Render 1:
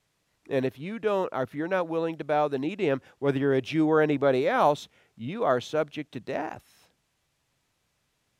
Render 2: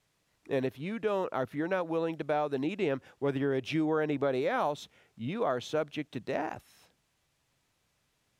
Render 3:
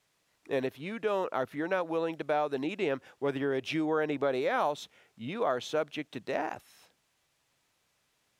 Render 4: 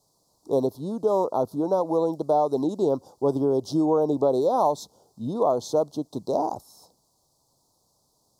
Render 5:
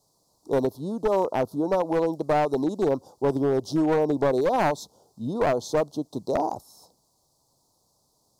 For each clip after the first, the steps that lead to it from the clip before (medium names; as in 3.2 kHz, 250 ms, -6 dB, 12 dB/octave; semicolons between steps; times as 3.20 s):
compression 6:1, threshold -25 dBFS, peak gain reduction 9 dB; trim -1 dB
bass shelf 220 Hz -10 dB; trim +2 dB
elliptic band-stop 980–4500 Hz, stop band 60 dB; trim +9 dB
one-sided wavefolder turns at -19 dBFS